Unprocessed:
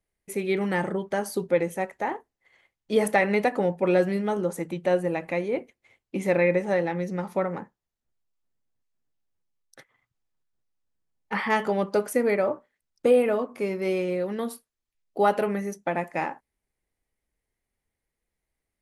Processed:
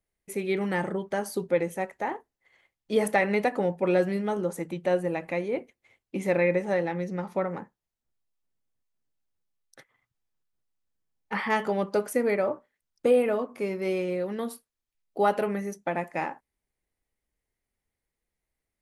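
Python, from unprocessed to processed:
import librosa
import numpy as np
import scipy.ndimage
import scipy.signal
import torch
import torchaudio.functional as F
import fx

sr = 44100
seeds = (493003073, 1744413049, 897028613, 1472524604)

y = fx.high_shelf(x, sr, hz=10000.0, db=-10.0, at=(7.04, 7.47))
y = y * 10.0 ** (-2.0 / 20.0)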